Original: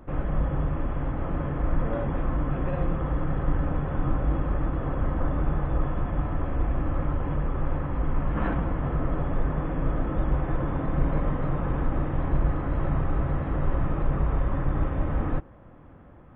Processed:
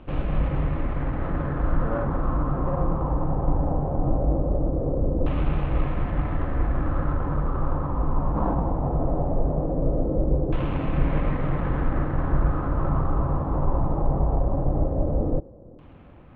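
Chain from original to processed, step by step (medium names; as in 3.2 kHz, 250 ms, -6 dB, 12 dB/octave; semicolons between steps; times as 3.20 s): median filter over 25 samples; LFO low-pass saw down 0.19 Hz 470–2800 Hz; trim +2 dB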